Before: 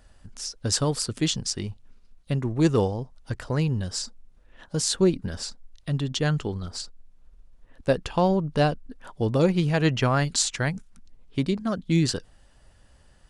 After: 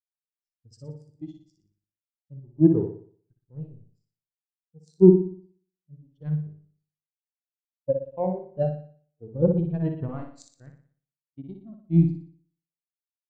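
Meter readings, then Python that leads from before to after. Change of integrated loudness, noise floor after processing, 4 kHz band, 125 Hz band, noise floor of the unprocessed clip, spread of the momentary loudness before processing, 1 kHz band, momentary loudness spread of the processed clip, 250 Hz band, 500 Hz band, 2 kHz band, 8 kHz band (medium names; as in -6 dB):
+2.5 dB, under -85 dBFS, under -30 dB, -2.0 dB, -56 dBFS, 13 LU, -12.0 dB, 25 LU, +1.0 dB, +0.5 dB, under -25 dB, under -30 dB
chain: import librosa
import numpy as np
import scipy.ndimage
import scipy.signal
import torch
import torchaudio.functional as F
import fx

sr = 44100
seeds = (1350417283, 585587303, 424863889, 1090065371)

y = fx.power_curve(x, sr, exponent=2.0)
y = fx.room_flutter(y, sr, wall_m=10.2, rt60_s=1.2)
y = fx.spectral_expand(y, sr, expansion=2.5)
y = y * 10.0 ** (3.5 / 20.0)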